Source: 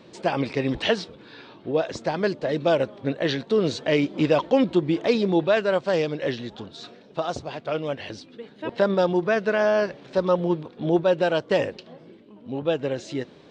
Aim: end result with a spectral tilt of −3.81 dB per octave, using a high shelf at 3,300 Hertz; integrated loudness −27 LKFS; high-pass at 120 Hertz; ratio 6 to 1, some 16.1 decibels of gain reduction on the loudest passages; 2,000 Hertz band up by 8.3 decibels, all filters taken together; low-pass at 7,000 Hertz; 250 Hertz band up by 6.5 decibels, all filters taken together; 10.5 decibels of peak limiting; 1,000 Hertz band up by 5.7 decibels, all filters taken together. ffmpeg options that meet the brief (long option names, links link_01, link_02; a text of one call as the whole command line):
ffmpeg -i in.wav -af "highpass=120,lowpass=7000,equalizer=frequency=250:width_type=o:gain=8.5,equalizer=frequency=1000:width_type=o:gain=5,equalizer=frequency=2000:width_type=o:gain=7,highshelf=frequency=3300:gain=6.5,acompressor=threshold=-28dB:ratio=6,volume=7.5dB,alimiter=limit=-15dB:level=0:latency=1" out.wav